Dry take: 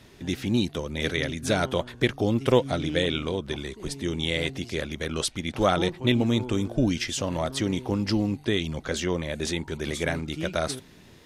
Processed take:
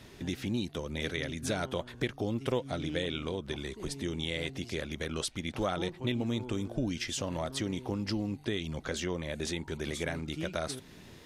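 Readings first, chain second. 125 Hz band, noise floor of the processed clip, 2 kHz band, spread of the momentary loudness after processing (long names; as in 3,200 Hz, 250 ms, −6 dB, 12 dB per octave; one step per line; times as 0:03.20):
−7.5 dB, −52 dBFS, −7.5 dB, 4 LU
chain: downward compressor 2 to 1, threshold −36 dBFS, peak gain reduction 12 dB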